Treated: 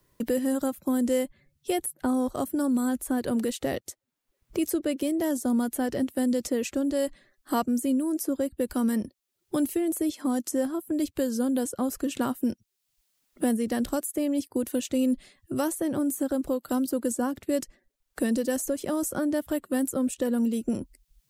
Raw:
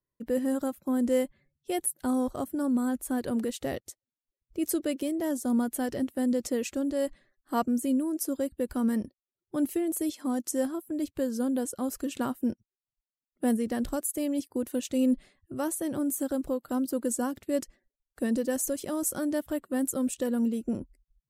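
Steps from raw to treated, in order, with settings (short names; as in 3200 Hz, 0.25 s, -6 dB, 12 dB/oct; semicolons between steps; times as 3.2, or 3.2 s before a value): three-band squash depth 70%; gain +2 dB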